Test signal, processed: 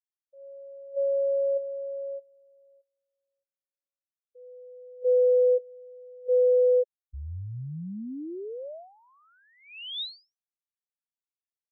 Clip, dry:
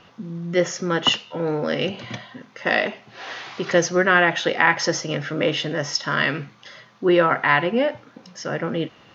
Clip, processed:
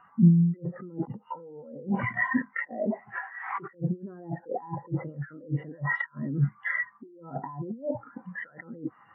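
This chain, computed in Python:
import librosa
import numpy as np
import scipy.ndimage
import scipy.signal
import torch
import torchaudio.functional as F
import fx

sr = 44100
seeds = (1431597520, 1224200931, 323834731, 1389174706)

y = scipy.signal.sosfilt(scipy.signal.cheby2(4, 40, 6200.0, 'lowpass', fs=sr, output='sos'), x)
y = fx.env_lowpass_down(y, sr, base_hz=390.0, full_db=-18.0)
y = fx.band_shelf(y, sr, hz=1300.0, db=9.0, octaves=1.7)
y = fx.over_compress(y, sr, threshold_db=-34.0, ratio=-1.0)
y = fx.spectral_expand(y, sr, expansion=2.5)
y = y * librosa.db_to_amplitude(4.5)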